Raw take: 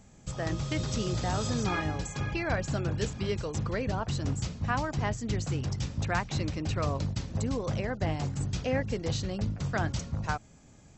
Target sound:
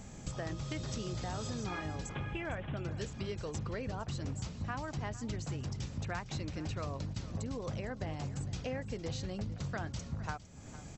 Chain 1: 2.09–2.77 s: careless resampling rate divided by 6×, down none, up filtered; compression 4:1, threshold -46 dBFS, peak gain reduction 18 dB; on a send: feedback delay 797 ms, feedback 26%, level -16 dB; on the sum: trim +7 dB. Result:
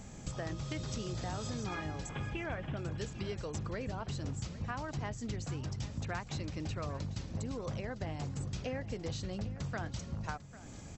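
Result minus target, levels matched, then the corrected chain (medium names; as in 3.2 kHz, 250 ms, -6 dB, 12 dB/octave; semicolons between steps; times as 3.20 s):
echo 340 ms late
2.09–2.77 s: careless resampling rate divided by 6×, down none, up filtered; compression 4:1, threshold -46 dBFS, peak gain reduction 18 dB; on a send: feedback delay 457 ms, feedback 26%, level -16 dB; on the sum: trim +7 dB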